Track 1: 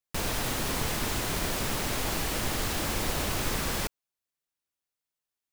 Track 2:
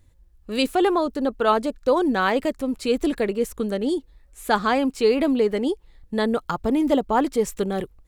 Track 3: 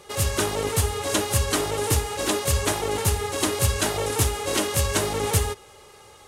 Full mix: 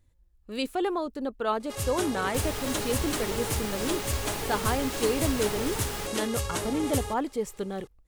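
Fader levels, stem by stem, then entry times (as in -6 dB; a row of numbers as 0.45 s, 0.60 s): -5.0 dB, -8.5 dB, -8.5 dB; 2.20 s, 0.00 s, 1.60 s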